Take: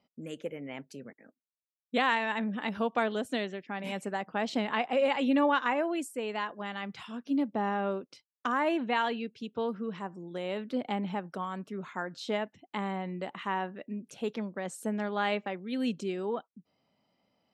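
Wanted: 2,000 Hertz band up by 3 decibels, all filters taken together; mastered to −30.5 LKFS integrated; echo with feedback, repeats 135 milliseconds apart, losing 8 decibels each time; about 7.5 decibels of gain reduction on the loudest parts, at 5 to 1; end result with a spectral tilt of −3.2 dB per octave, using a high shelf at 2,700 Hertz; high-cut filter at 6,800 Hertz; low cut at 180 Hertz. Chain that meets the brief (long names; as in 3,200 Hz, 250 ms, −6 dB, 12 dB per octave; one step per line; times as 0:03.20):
high-pass filter 180 Hz
low-pass filter 6,800 Hz
parametric band 2,000 Hz +5 dB
high-shelf EQ 2,700 Hz −3.5 dB
downward compressor 5 to 1, threshold −30 dBFS
repeating echo 135 ms, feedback 40%, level −8 dB
level +5.5 dB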